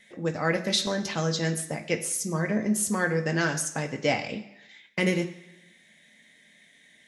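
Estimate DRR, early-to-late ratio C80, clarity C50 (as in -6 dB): 4.0 dB, 14.5 dB, 12.0 dB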